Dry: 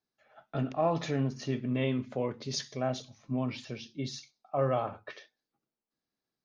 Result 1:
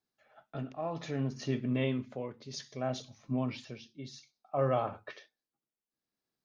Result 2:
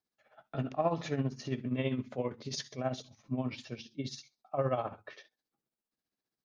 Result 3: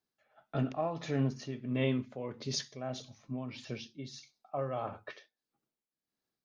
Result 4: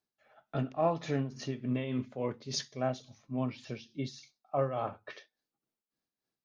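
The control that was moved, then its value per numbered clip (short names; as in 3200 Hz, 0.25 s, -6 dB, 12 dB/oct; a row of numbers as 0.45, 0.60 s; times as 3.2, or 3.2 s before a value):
tremolo, rate: 0.62, 15, 1.6, 3.5 Hz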